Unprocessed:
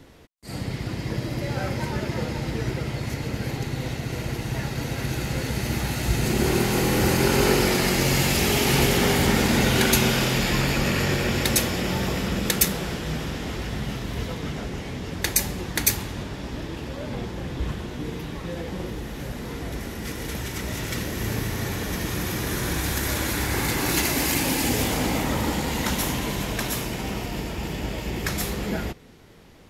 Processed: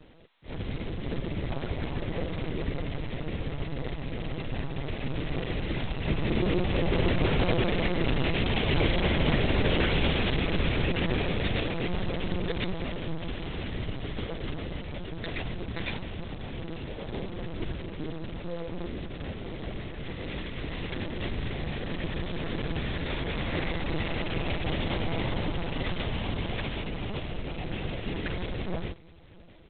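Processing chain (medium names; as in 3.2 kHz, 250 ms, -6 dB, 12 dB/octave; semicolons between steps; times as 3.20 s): peaking EQ 1.3 kHz -8 dB 0.98 oct; comb 6 ms, depth 60%; delay 662 ms -24 dB; LPC vocoder at 8 kHz pitch kept; trim -4 dB; G.726 16 kbps 8 kHz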